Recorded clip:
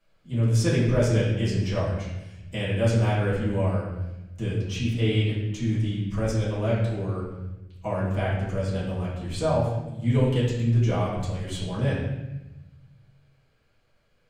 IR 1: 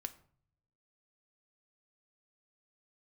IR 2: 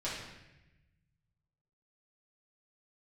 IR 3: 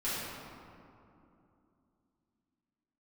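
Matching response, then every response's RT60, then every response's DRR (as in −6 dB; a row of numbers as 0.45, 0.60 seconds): 2; 0.55, 0.95, 2.8 seconds; 8.5, −9.0, −12.0 decibels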